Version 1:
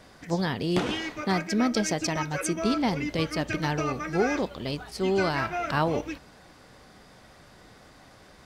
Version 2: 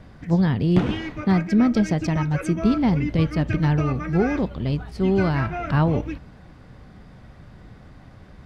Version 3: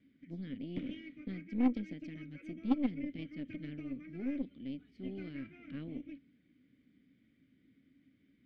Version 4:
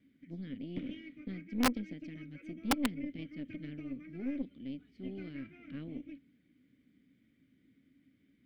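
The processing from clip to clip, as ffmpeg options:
ffmpeg -i in.wav -af "bass=frequency=250:gain=14,treble=frequency=4000:gain=-11" out.wav
ffmpeg -i in.wav -filter_complex "[0:a]asplit=3[link_01][link_02][link_03];[link_01]bandpass=frequency=270:width_type=q:width=8,volume=0dB[link_04];[link_02]bandpass=frequency=2290:width_type=q:width=8,volume=-6dB[link_05];[link_03]bandpass=frequency=3010:width_type=q:width=8,volume=-9dB[link_06];[link_04][link_05][link_06]amix=inputs=3:normalize=0,aeval=exprs='0.188*(cos(1*acos(clip(val(0)/0.188,-1,1)))-cos(1*PI/2))+0.0422*(cos(3*acos(clip(val(0)/0.188,-1,1)))-cos(3*PI/2))+0.0133*(cos(4*acos(clip(val(0)/0.188,-1,1)))-cos(4*PI/2))+0.00841*(cos(5*acos(clip(val(0)/0.188,-1,1)))-cos(5*PI/2))':channel_layout=same,volume=-3.5dB" out.wav
ffmpeg -i in.wav -af "aeval=exprs='(mod(10*val(0)+1,2)-1)/10':channel_layout=same" out.wav

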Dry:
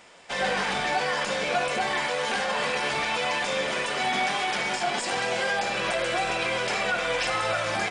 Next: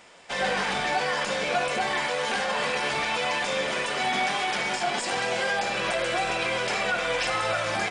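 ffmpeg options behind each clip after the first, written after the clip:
ffmpeg -i in.wav -af anull out.wav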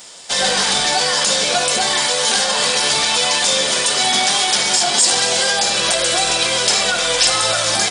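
ffmpeg -i in.wav -af "aexciter=amount=5.8:drive=4.1:freq=3400,volume=6dB" out.wav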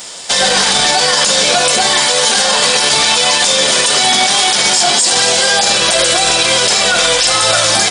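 ffmpeg -i in.wav -af "alimiter=level_in=10.5dB:limit=-1dB:release=50:level=0:latency=1,volume=-1dB" out.wav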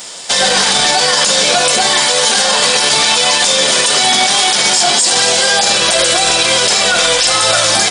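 ffmpeg -i in.wav -af "equalizer=frequency=69:width=1.5:gain=-5" out.wav

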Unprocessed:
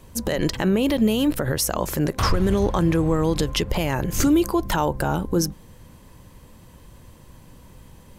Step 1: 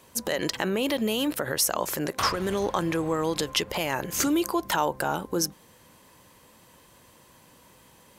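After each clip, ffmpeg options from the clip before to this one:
ffmpeg -i in.wav -af "highpass=frequency=600:poles=1" out.wav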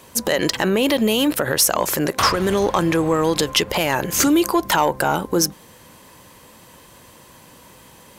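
ffmpeg -i in.wav -af "asoftclip=type=tanh:threshold=-15dB,volume=9dB" out.wav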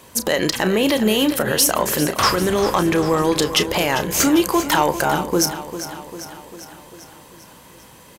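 ffmpeg -i in.wav -filter_complex "[0:a]asplit=2[link_01][link_02];[link_02]adelay=33,volume=-11dB[link_03];[link_01][link_03]amix=inputs=2:normalize=0,aecho=1:1:397|794|1191|1588|1985|2382|2779:0.251|0.148|0.0874|0.0516|0.0304|0.018|0.0106" out.wav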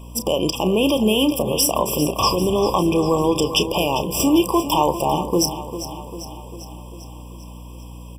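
ffmpeg -i in.wav -af "aeval=exprs='val(0)+0.0158*(sin(2*PI*60*n/s)+sin(2*PI*2*60*n/s)/2+sin(2*PI*3*60*n/s)/3+sin(2*PI*4*60*n/s)/4+sin(2*PI*5*60*n/s)/5)':channel_layout=same,afftfilt=real='re*eq(mod(floor(b*sr/1024/1200),2),0)':imag='im*eq(mod(floor(b*sr/1024/1200),2),0)':win_size=1024:overlap=0.75" out.wav

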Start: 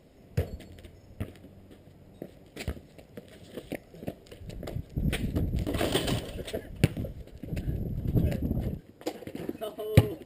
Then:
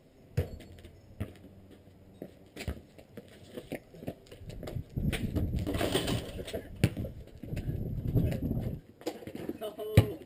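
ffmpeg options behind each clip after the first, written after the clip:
ffmpeg -i in.wav -af "flanger=delay=7.7:depth=2.9:regen=-52:speed=0.24:shape=sinusoidal,volume=1.5dB" out.wav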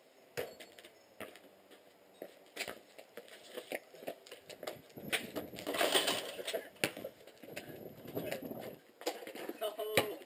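ffmpeg -i in.wav -af "highpass=590,volume=3.5dB" out.wav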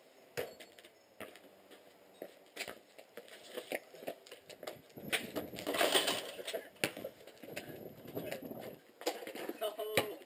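ffmpeg -i in.wav -af "tremolo=f=0.54:d=0.34,volume=1.5dB" out.wav

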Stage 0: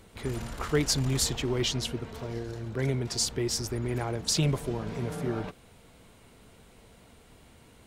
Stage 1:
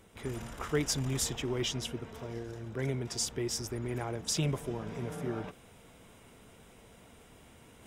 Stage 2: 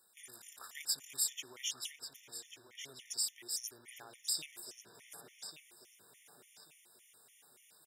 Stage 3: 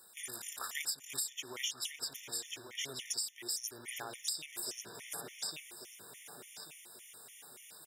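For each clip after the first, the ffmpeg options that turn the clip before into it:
ffmpeg -i in.wav -af "lowshelf=frequency=81:gain=-5.5,bandreject=frequency=4300:width=5.1,areverse,acompressor=mode=upward:threshold=-45dB:ratio=2.5,areverse,volume=-4dB" out.wav
ffmpeg -i in.wav -filter_complex "[0:a]aderivative,asplit=2[link_01][link_02];[link_02]adelay=1139,lowpass=frequency=3700:poles=1,volume=-7dB,asplit=2[link_03][link_04];[link_04]adelay=1139,lowpass=frequency=3700:poles=1,volume=0.39,asplit=2[link_05][link_06];[link_06]adelay=1139,lowpass=frequency=3700:poles=1,volume=0.39,asplit=2[link_07][link_08];[link_08]adelay=1139,lowpass=frequency=3700:poles=1,volume=0.39,asplit=2[link_09][link_10];[link_10]adelay=1139,lowpass=frequency=3700:poles=1,volume=0.39[link_11];[link_01][link_03][link_05][link_07][link_09][link_11]amix=inputs=6:normalize=0,afftfilt=real='re*gt(sin(2*PI*3.5*pts/sr)*(1-2*mod(floor(b*sr/1024/1800),2)),0)':imag='im*gt(sin(2*PI*3.5*pts/sr)*(1-2*mod(floor(b*sr/1024/1800),2)),0)':win_size=1024:overlap=0.75,volume=3dB" out.wav
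ffmpeg -i in.wav -af "acompressor=threshold=-44dB:ratio=16,volume=10dB" out.wav

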